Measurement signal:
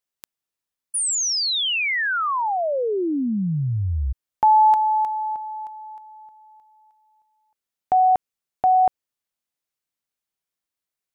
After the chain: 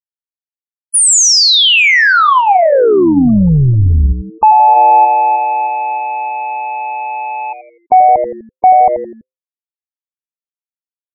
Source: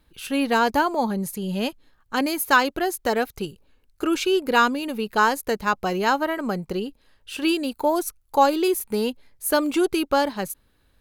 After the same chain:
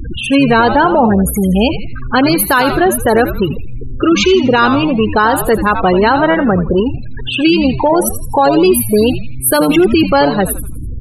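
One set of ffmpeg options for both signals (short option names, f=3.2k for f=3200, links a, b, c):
-filter_complex "[0:a]aeval=exprs='val(0)+0.5*0.0531*sgn(val(0))':c=same,bandreject=f=300.2:t=h:w=4,bandreject=f=600.4:t=h:w=4,bandreject=f=900.6:t=h:w=4,bandreject=f=1.2008k:t=h:w=4,bandreject=f=1.501k:t=h:w=4,bandreject=f=1.8012k:t=h:w=4,bandreject=f=2.1014k:t=h:w=4,bandreject=f=2.4016k:t=h:w=4,bandreject=f=2.7018k:t=h:w=4,bandreject=f=3.002k:t=h:w=4,bandreject=f=3.3022k:t=h:w=4,bandreject=f=3.6024k:t=h:w=4,bandreject=f=3.9026k:t=h:w=4,bandreject=f=4.2028k:t=h:w=4,bandreject=f=4.503k:t=h:w=4,bandreject=f=4.8032k:t=h:w=4,bandreject=f=5.1034k:t=h:w=4,bandreject=f=5.4036k:t=h:w=4,bandreject=f=5.7038k:t=h:w=4,bandreject=f=6.004k:t=h:w=4,bandreject=f=6.3042k:t=h:w=4,bandreject=f=6.6044k:t=h:w=4,bandreject=f=6.9046k:t=h:w=4,bandreject=f=7.2048k:t=h:w=4,bandreject=f=7.505k:t=h:w=4,bandreject=f=7.8052k:t=h:w=4,bandreject=f=8.1054k:t=h:w=4,bandreject=f=8.4056k:t=h:w=4,bandreject=f=8.7058k:t=h:w=4,bandreject=f=9.006k:t=h:w=4,bandreject=f=9.3062k:t=h:w=4,bandreject=f=9.6064k:t=h:w=4,bandreject=f=9.9066k:t=h:w=4,bandreject=f=10.2068k:t=h:w=4,bandreject=f=10.507k:t=h:w=4,afftfilt=real='re*gte(hypot(re,im),0.0708)':imag='im*gte(hypot(re,im),0.0708)':win_size=1024:overlap=0.75,asplit=5[a][b][c][d][e];[b]adelay=83,afreqshift=-130,volume=-11dB[f];[c]adelay=166,afreqshift=-260,volume=-18.7dB[g];[d]adelay=249,afreqshift=-390,volume=-26.5dB[h];[e]adelay=332,afreqshift=-520,volume=-34.2dB[i];[a][f][g][h][i]amix=inputs=5:normalize=0,alimiter=level_in=12.5dB:limit=-1dB:release=50:level=0:latency=1,volume=-1dB"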